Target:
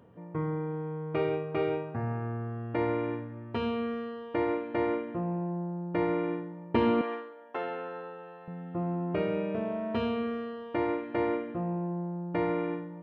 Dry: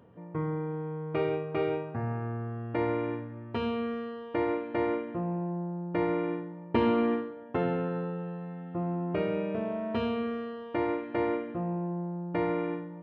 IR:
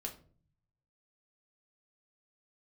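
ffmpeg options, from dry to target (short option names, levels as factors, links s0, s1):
-filter_complex "[0:a]asettb=1/sr,asplit=3[s0][s1][s2];[s0]atrim=end=7.014[s3];[s1]atrim=start=7.01:end=8.48,asetpts=PTS-STARTPTS,afade=t=in:d=0.004:c=qsin,afade=t=out:st=1.466:d=0.004:c=qsin,highpass=590[s4];[s2]atrim=start=8.476[s5];[s3][s4]acrossfade=d=0.004:c1=hsin:c2=qsin[s6];[s6][s5]acrossfade=d=0.004:c1=qsin:c2=hsin"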